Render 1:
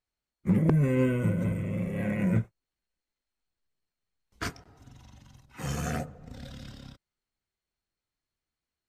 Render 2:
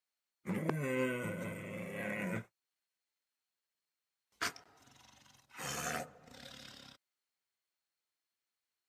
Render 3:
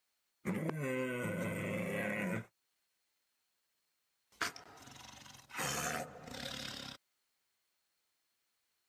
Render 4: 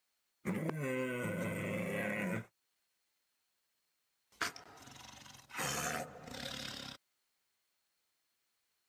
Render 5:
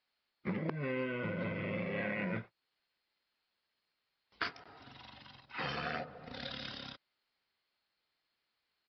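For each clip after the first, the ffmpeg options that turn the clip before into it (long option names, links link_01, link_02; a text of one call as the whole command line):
ffmpeg -i in.wav -af "highpass=frequency=980:poles=1" out.wav
ffmpeg -i in.wav -af "acompressor=threshold=-43dB:ratio=8,volume=8.5dB" out.wav
ffmpeg -i in.wav -af "acrusher=bits=9:mode=log:mix=0:aa=0.000001" out.wav
ffmpeg -i in.wav -af "aresample=11025,aresample=44100,volume=1dB" out.wav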